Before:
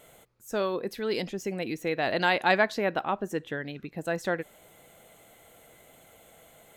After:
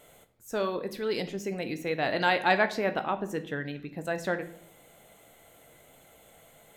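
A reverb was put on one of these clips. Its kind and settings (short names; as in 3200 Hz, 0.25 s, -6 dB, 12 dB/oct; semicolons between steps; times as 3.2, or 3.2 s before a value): shoebox room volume 110 m³, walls mixed, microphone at 0.31 m; gain -1.5 dB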